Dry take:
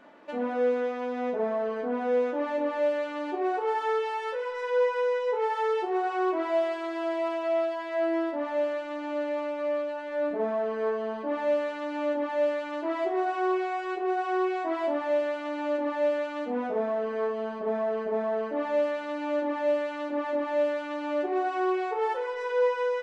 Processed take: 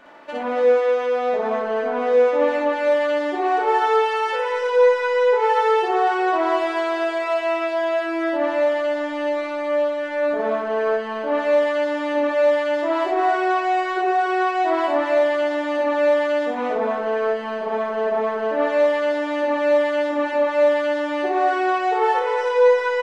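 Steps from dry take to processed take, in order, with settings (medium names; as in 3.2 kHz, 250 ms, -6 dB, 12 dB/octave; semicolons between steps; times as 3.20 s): peaking EQ 210 Hz -8 dB 2.1 oct; loudspeakers at several distances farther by 20 m 0 dB, 97 m -5 dB; on a send at -19 dB: reverberation RT60 5.6 s, pre-delay 11 ms; on the sum: trim +7.5 dB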